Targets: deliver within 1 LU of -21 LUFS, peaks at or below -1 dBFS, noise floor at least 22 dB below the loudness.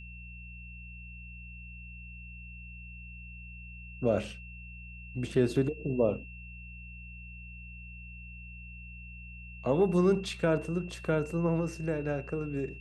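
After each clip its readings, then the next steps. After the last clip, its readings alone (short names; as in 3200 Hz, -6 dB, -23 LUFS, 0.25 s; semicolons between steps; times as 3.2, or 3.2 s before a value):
hum 60 Hz; harmonics up to 180 Hz; hum level -44 dBFS; steady tone 2700 Hz; tone level -48 dBFS; loudness -30.5 LUFS; peak -14.5 dBFS; loudness target -21.0 LUFS
-> de-hum 60 Hz, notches 3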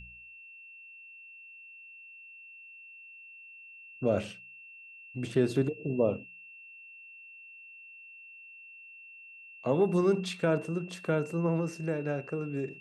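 hum none; steady tone 2700 Hz; tone level -48 dBFS
-> notch 2700 Hz, Q 30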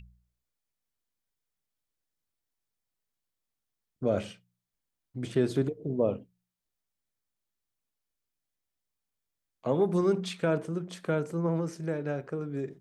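steady tone none; loudness -30.5 LUFS; peak -14.5 dBFS; loudness target -21.0 LUFS
-> gain +9.5 dB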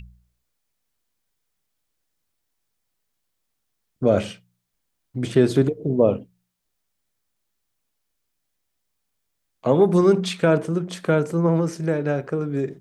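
loudness -21.0 LUFS; peak -5.0 dBFS; noise floor -76 dBFS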